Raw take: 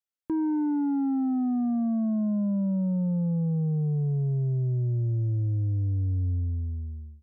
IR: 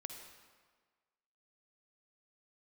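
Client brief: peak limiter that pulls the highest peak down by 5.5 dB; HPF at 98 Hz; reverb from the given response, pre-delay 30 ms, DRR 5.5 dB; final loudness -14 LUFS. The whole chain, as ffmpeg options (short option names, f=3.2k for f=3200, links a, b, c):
-filter_complex "[0:a]highpass=98,alimiter=level_in=3dB:limit=-24dB:level=0:latency=1,volume=-3dB,asplit=2[a][b];[1:a]atrim=start_sample=2205,adelay=30[c];[b][c]afir=irnorm=-1:irlink=0,volume=-2.5dB[d];[a][d]amix=inputs=2:normalize=0,volume=17dB"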